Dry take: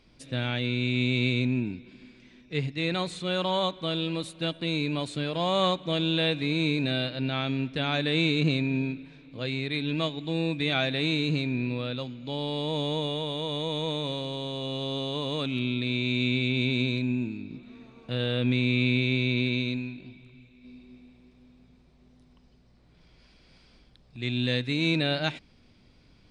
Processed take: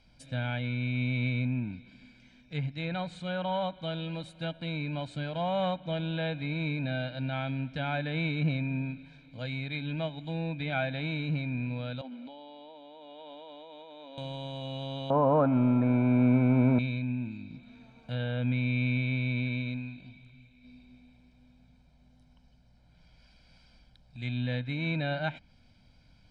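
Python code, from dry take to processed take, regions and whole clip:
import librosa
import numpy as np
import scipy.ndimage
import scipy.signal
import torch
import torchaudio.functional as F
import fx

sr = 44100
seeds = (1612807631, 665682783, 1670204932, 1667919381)

y = fx.chain(x, sr, fx.cheby_ripple_highpass(hz=190.0, ripple_db=3),
    fx.air_absorb(metres=240.0),
    fx.over_compress(threshold_db=-42.0, ratio=-1.0), at=(12.01, 14.18))
y = fx.chain(y, sr, fx.law_mismatch(coded='mu'),
    fx.lowpass_res(hz=1200.0, q=3.9),
    fx.peak_eq(hz=440.0, db=13.5, octaves=2.7), at=(15.1, 16.79))
y = fx.env_lowpass_down(y, sr, base_hz=2800.0, full_db=-23.5)
y = y + 0.75 * np.pad(y, (int(1.3 * sr / 1000.0), 0))[:len(y)]
y = fx.dynamic_eq(y, sr, hz=5200.0, q=0.85, threshold_db=-49.0, ratio=4.0, max_db=-6)
y = y * librosa.db_to_amplitude(-5.0)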